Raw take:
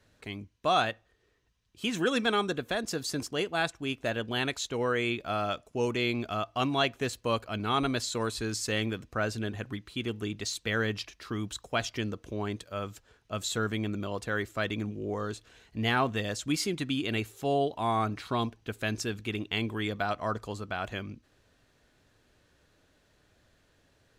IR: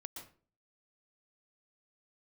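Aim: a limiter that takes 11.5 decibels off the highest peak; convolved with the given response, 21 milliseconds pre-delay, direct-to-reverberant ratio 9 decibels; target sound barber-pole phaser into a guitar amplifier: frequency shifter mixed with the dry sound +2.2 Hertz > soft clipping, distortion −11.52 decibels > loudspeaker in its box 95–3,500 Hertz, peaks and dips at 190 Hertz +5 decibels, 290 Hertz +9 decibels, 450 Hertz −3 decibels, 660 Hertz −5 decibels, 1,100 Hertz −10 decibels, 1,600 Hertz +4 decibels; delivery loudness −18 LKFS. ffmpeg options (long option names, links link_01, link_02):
-filter_complex "[0:a]alimiter=level_in=2dB:limit=-24dB:level=0:latency=1,volume=-2dB,asplit=2[link_01][link_02];[1:a]atrim=start_sample=2205,adelay=21[link_03];[link_02][link_03]afir=irnorm=-1:irlink=0,volume=-5dB[link_04];[link_01][link_04]amix=inputs=2:normalize=0,asplit=2[link_05][link_06];[link_06]afreqshift=2.2[link_07];[link_05][link_07]amix=inputs=2:normalize=1,asoftclip=threshold=-36.5dB,highpass=95,equalizer=frequency=190:width_type=q:width=4:gain=5,equalizer=frequency=290:width_type=q:width=4:gain=9,equalizer=frequency=450:width_type=q:width=4:gain=-3,equalizer=frequency=660:width_type=q:width=4:gain=-5,equalizer=frequency=1100:width_type=q:width=4:gain=-10,equalizer=frequency=1600:width_type=q:width=4:gain=4,lowpass=frequency=3500:width=0.5412,lowpass=frequency=3500:width=1.3066,volume=23.5dB"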